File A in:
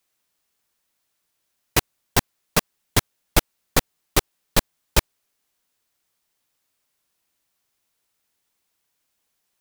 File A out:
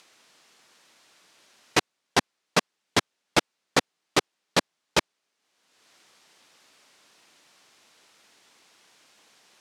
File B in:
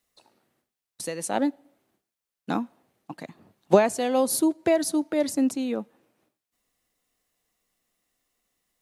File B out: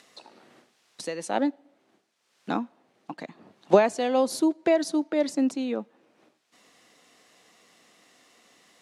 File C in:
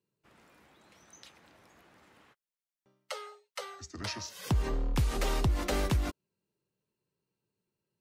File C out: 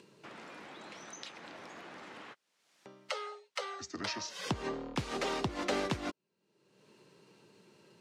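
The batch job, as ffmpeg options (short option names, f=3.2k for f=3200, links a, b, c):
-filter_complex "[0:a]asplit=2[a][b];[b]acompressor=mode=upward:threshold=-29dB:ratio=2.5,volume=2dB[c];[a][c]amix=inputs=2:normalize=0,highpass=200,lowpass=6k,volume=-7dB"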